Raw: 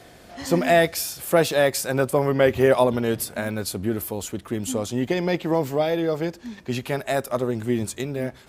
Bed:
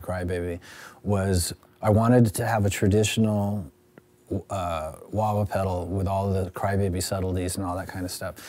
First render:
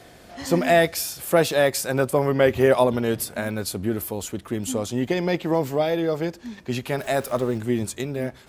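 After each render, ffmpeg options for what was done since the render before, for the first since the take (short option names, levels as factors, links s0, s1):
-filter_complex "[0:a]asettb=1/sr,asplit=3[s0][s1][s2];[s0]atrim=end=6.984[s3];[s1]atrim=start=6.98:end=7.58,asetpts=PTS-STARTPTS,afade=t=in:d=0.004:c=qsin,afade=t=out:st=0.596:d=0.004:c=qsin,aeval=exprs='val(0)+0.5*0.0133*sgn(val(0))':c=same[s4];[s2]atrim=start=7.576[s5];[s3][s4]acrossfade=d=0.004:c1=hsin:c2=qsin[s6];[s6][s5]acrossfade=d=0.004:c1=qsin:c2=hsin"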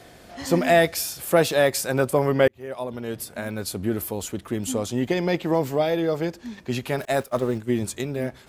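-filter_complex "[0:a]asettb=1/sr,asplit=3[s0][s1][s2];[s0]atrim=end=7.054[s3];[s1]atrim=start=7.05:end=7.83,asetpts=PTS-STARTPTS,afade=t=in:d=0.004:c=qsin,afade=t=out:st=0.776:d=0.004:c=qsin,agate=range=0.0224:threshold=0.0562:ratio=3:release=100:detection=peak[s4];[s2]atrim=start=7.826[s5];[s3][s4]acrossfade=d=0.004:c1=hsin:c2=qsin[s6];[s6][s5]acrossfade=d=0.004:c1=qsin:c2=hsin,asplit=2[s7][s8];[s7]atrim=end=2.48,asetpts=PTS-STARTPTS,afade=t=out:st=2.476:d=0.004:c=hsin[s9];[s8]atrim=start=2.48,asetpts=PTS-STARTPTS,afade=t=in:d=1.44[s10];[s9][s10]concat=n=2:v=0:a=1"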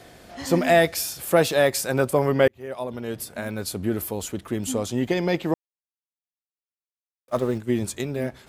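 -filter_complex "[0:a]asplit=3[s0][s1][s2];[s0]atrim=end=5.54,asetpts=PTS-STARTPTS,afade=t=out:st=5.536:d=0.004:c=hsin[s3];[s1]atrim=start=5.54:end=7.28,asetpts=PTS-STARTPTS,volume=0[s4];[s2]atrim=start=7.28,asetpts=PTS-STARTPTS,afade=t=in:d=0.004:c=hsin[s5];[s3][s4][s5]concat=n=3:v=0:a=1"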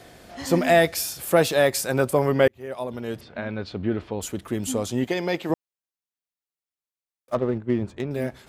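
-filter_complex "[0:a]asplit=3[s0][s1][s2];[s0]afade=t=out:st=3.19:d=0.02[s3];[s1]lowpass=f=3800:w=0.5412,lowpass=f=3800:w=1.3066,afade=t=in:st=3.19:d=0.02,afade=t=out:st=4.21:d=0.02[s4];[s2]afade=t=in:st=4.21:d=0.02[s5];[s3][s4][s5]amix=inputs=3:normalize=0,asettb=1/sr,asplit=3[s6][s7][s8];[s6]atrim=end=5.044[s9];[s7]atrim=start=5.04:end=5.5,asetpts=PTS-STARTPTS,afade=t=in:d=0.004:c=qsin,afade=t=out:st=0.456:d=0.004:c=qsin,lowshelf=f=200:g=-10.5[s10];[s8]atrim=start=5.496[s11];[s9][s10]acrossfade=d=0.004:c1=hsin:c2=qsin[s12];[s12][s11]acrossfade=d=0.004:c1=qsin:c2=hsin,asettb=1/sr,asplit=3[s13][s14][s15];[s13]atrim=end=7.344[s16];[s14]atrim=start=7.34:end=8.11,asetpts=PTS-STARTPTS,afade=t=in:d=0.004:c=qsin,afade=t=out:st=0.766:d=0.004:c=qsin,adynamicsmooth=sensitivity=1.5:basefreq=1500[s17];[s15]atrim=start=8.106[s18];[s16][s17]acrossfade=d=0.004:c1=hsin:c2=qsin[s19];[s19][s18]acrossfade=d=0.004:c1=qsin:c2=hsin"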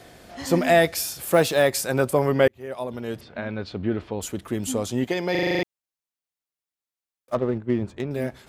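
-filter_complex "[0:a]asettb=1/sr,asplit=3[s0][s1][s2];[s0]atrim=end=1.074[s3];[s1]atrim=start=1.07:end=1.63,asetpts=PTS-STARTPTS,afade=t=in:d=0.004:c=qsin,afade=t=out:st=0.556:d=0.004:c=qsin,acrusher=bits=8:mode=log:mix=0:aa=0.000001[s4];[s2]atrim=start=1.626[s5];[s3][s4]acrossfade=d=0.004:c1=hsin:c2=qsin[s6];[s6][s5]acrossfade=d=0.004:c1=qsin:c2=hsin,asplit=9[s7][s8][s9][s10][s11][s12][s13][s14][s15];[s7]atrim=end=5.352[s16];[s8]atrim=start=5.308:end=5.352[s17];[s9]atrim=start=5.308:end=5.352[s18];[s10]atrim=start=5.308:end=5.352[s19];[s11]atrim=start=5.308:end=5.352[s20];[s12]atrim=start=5.308:end=5.352[s21];[s13]atrim=start=5.308:end=5.352[s22];[s14]atrim=start=5.308:end=5.352[s23];[s15]atrim=start=5.628[s24];[s16][s17]acrossfade=d=0.004:c1=hsin:c2=hsin[s25];[s25][s18]acrossfade=d=0.004:c1=hsin:c2=hsin[s26];[s26][s19]acrossfade=d=0.004:c1=hsin:c2=hsin[s27];[s27][s20]acrossfade=d=0.004:c1=hsin:c2=hsin[s28];[s28][s21]acrossfade=d=0.004:c1=hsin:c2=hsin[s29];[s29][s22]acrossfade=d=0.004:c1=hsin:c2=hsin[s30];[s30][s23]acrossfade=d=0.004:c1=hsin:c2=hsin[s31];[s31][s24]acrossfade=d=0.004:c1=hsin:c2=hsin"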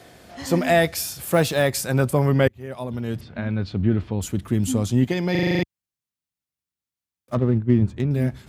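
-af "highpass=63,asubboost=boost=5:cutoff=220"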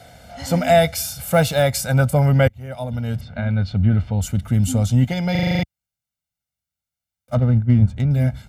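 -af "lowshelf=f=82:g=7,aecho=1:1:1.4:0.8"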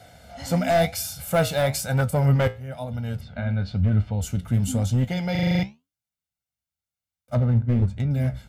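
-af "volume=3.35,asoftclip=hard,volume=0.299,flanger=delay=9.5:depth=7.9:regen=67:speed=1:shape=sinusoidal"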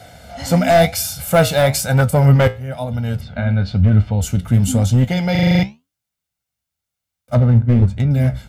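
-af "volume=2.51"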